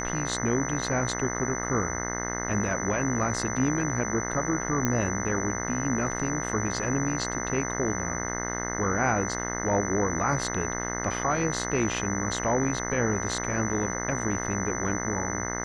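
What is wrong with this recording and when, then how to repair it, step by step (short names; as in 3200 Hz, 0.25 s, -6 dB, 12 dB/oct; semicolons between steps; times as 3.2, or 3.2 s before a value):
buzz 60 Hz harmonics 35 -33 dBFS
tone 6000 Hz -34 dBFS
4.85 pop -11 dBFS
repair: de-click; notch 6000 Hz, Q 30; de-hum 60 Hz, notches 35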